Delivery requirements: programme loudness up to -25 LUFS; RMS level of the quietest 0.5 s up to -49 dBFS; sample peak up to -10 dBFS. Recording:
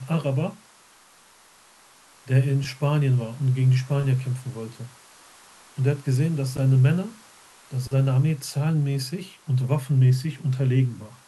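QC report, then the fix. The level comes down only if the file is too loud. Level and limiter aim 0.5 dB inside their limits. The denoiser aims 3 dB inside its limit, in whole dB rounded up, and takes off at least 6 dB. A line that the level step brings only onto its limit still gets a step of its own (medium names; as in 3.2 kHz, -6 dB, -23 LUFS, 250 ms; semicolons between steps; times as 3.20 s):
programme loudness -23.5 LUFS: fail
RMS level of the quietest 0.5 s -54 dBFS: pass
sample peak -9.0 dBFS: fail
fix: trim -2 dB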